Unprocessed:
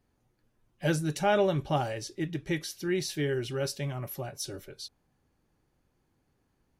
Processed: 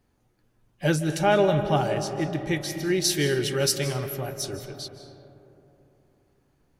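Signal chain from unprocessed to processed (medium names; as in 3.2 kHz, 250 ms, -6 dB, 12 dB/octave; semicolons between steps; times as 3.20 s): 3.04–4.07 s: treble shelf 2.7 kHz +10.5 dB; algorithmic reverb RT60 3.3 s, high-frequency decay 0.3×, pre-delay 120 ms, DRR 8.5 dB; trim +4.5 dB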